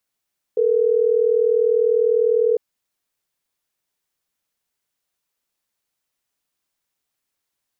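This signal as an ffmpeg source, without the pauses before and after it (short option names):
-f lavfi -i "aevalsrc='0.141*(sin(2*PI*440*t)+sin(2*PI*480*t))*clip(min(mod(t,6),2-mod(t,6))/0.005,0,1)':d=3.12:s=44100"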